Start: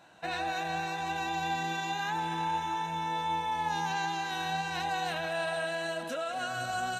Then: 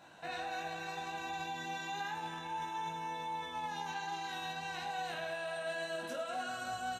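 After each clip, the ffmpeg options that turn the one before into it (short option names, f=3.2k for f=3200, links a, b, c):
-filter_complex "[0:a]alimiter=level_in=9dB:limit=-24dB:level=0:latency=1:release=38,volume=-9dB,asplit=2[a][b];[b]aecho=0:1:20|52|103.2|185.1|316.2:0.631|0.398|0.251|0.158|0.1[c];[a][c]amix=inputs=2:normalize=0,volume=-1.5dB"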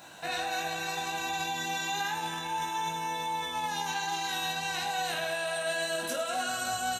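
-af "crystalizer=i=2.5:c=0,volume=6dB"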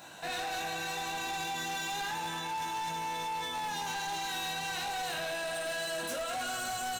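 -af "volume=33dB,asoftclip=hard,volume=-33dB"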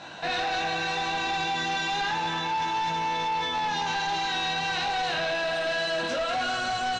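-af "lowpass=f=5.2k:w=0.5412,lowpass=f=5.2k:w=1.3066,volume=8dB"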